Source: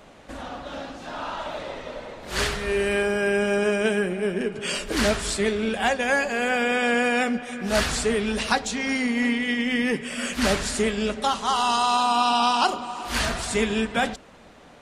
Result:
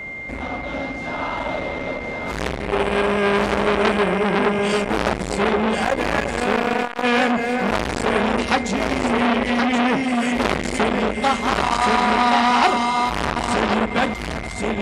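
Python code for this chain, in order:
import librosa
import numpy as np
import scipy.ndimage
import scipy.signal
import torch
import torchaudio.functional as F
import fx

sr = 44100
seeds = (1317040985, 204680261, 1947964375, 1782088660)

p1 = fx.rattle_buzz(x, sr, strikes_db=-29.0, level_db=-17.0)
p2 = scipy.signal.sosfilt(scipy.signal.butter(2, 51.0, 'highpass', fs=sr, output='sos'), p1)
p3 = fx.tilt_eq(p2, sr, slope=-2.0)
p4 = p3 + 10.0 ** (-36.0 / 20.0) * np.sin(2.0 * np.pi * 2100.0 * np.arange(len(p3)) / sr)
p5 = fx.overload_stage(p4, sr, gain_db=17.0, at=(5.84, 7.03))
p6 = p5 + fx.echo_single(p5, sr, ms=1073, db=-4.5, dry=0)
p7 = fx.transformer_sat(p6, sr, knee_hz=1900.0)
y = p7 * librosa.db_to_amplitude(6.5)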